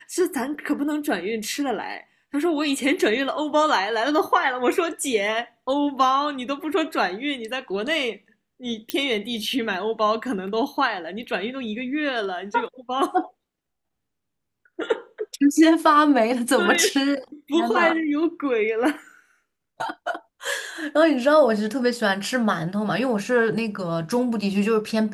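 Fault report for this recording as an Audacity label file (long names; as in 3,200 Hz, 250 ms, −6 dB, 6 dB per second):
8.900000	8.900000	click −8 dBFS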